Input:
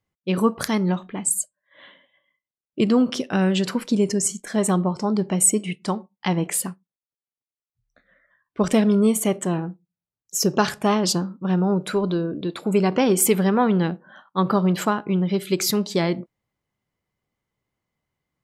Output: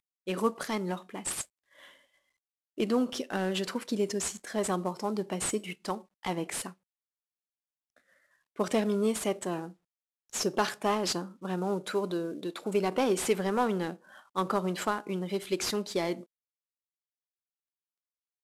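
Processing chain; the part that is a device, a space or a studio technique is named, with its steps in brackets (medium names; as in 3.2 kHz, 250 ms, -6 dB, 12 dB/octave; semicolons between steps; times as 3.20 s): early wireless headset (high-pass 280 Hz 12 dB/octave; CVSD coder 64 kbps); trim -6 dB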